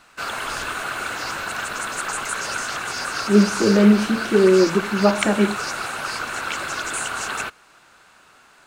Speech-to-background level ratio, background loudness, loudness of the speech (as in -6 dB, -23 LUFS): 8.0 dB, -26.0 LUFS, -18.0 LUFS